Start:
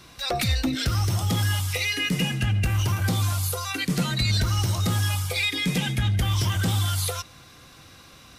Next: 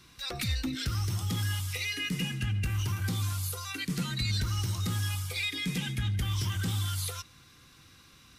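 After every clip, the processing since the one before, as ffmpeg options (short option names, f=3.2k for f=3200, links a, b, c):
-af "equalizer=f=640:w=1.7:g=-11,volume=-7dB"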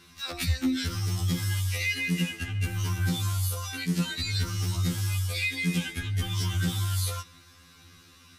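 -af "afftfilt=real='re*2*eq(mod(b,4),0)':imag='im*2*eq(mod(b,4),0)':win_size=2048:overlap=0.75,volume=5dB"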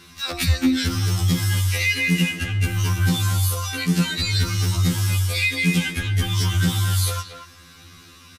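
-filter_complex "[0:a]asplit=2[a][b];[b]adelay=230,highpass=300,lowpass=3.4k,asoftclip=type=hard:threshold=-26dB,volume=-8dB[c];[a][c]amix=inputs=2:normalize=0,volume=7.5dB"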